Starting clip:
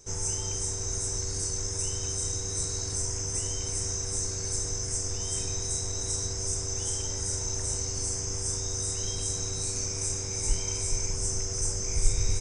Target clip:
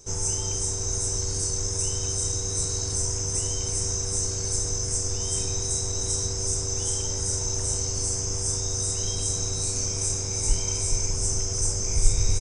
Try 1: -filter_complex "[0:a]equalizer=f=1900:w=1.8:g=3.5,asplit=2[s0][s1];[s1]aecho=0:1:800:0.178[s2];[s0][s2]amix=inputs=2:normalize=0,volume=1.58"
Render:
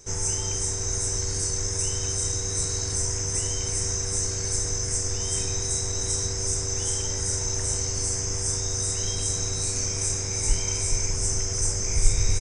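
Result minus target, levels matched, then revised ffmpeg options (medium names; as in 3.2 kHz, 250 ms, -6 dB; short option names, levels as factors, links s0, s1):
2 kHz band +5.5 dB
-filter_complex "[0:a]equalizer=f=1900:w=1.8:g=-4.5,asplit=2[s0][s1];[s1]aecho=0:1:800:0.178[s2];[s0][s2]amix=inputs=2:normalize=0,volume=1.58"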